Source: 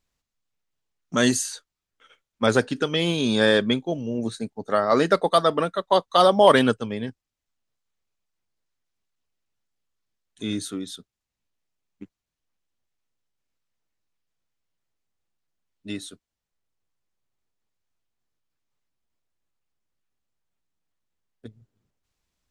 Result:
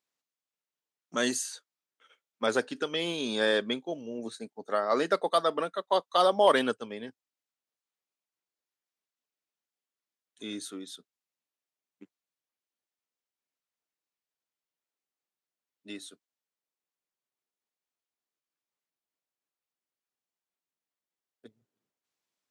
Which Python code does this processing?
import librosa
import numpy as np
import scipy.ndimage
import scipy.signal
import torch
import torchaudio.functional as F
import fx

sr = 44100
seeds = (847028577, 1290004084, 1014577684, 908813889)

y = scipy.signal.sosfilt(scipy.signal.butter(2, 290.0, 'highpass', fs=sr, output='sos'), x)
y = F.gain(torch.from_numpy(y), -6.5).numpy()